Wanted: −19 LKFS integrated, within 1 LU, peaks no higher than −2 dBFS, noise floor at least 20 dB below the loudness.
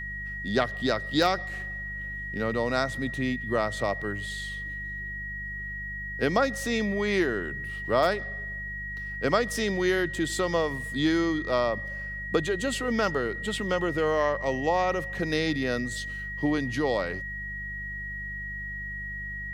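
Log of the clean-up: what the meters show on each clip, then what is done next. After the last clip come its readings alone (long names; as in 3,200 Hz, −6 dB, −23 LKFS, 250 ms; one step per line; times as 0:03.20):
mains hum 50 Hz; hum harmonics up to 200 Hz; level of the hum −38 dBFS; interfering tone 1,900 Hz; level of the tone −34 dBFS; integrated loudness −28.5 LKFS; sample peak −9.0 dBFS; target loudness −19.0 LKFS
→ hum removal 50 Hz, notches 4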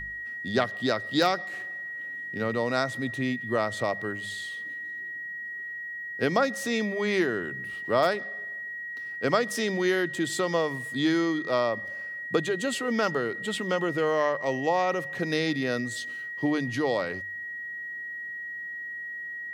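mains hum none found; interfering tone 1,900 Hz; level of the tone −34 dBFS
→ notch filter 1,900 Hz, Q 30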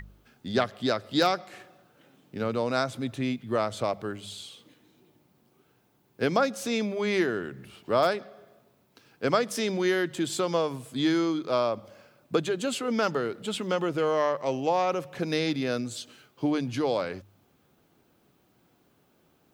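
interfering tone none found; integrated loudness −28.0 LKFS; sample peak −9.5 dBFS; target loudness −19.0 LKFS
→ level +9 dB
brickwall limiter −2 dBFS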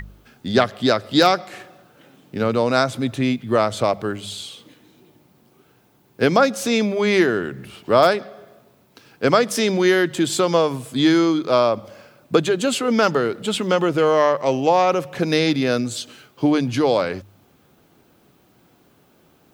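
integrated loudness −19.5 LKFS; sample peak −2.0 dBFS; background noise floor −57 dBFS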